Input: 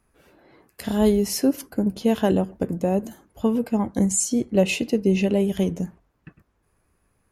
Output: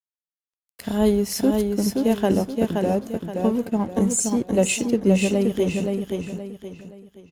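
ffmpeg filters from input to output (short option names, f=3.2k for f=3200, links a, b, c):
-filter_complex "[0:a]aeval=exprs='sgn(val(0))*max(abs(val(0))-0.00668,0)':c=same,asplit=2[a][b];[b]aecho=0:1:523|1046|1569|2092:0.631|0.215|0.0729|0.0248[c];[a][c]amix=inputs=2:normalize=0"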